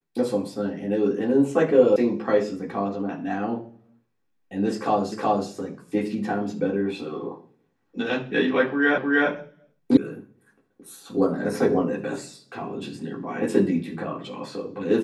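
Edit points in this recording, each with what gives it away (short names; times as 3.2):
1.96 sound cut off
5.12 repeat of the last 0.37 s
8.98 repeat of the last 0.31 s
9.97 sound cut off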